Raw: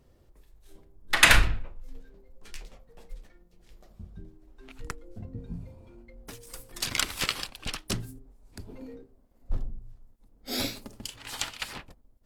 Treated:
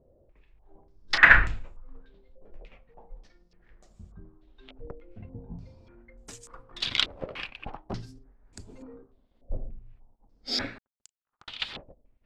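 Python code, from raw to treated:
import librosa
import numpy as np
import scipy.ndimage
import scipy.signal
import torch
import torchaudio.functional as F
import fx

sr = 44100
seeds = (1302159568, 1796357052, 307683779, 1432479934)

y = fx.power_curve(x, sr, exponent=3.0, at=(10.78, 11.48))
y = fx.filter_held_lowpass(y, sr, hz=3.4, low_hz=580.0, high_hz=7400.0)
y = y * librosa.db_to_amplitude(-3.5)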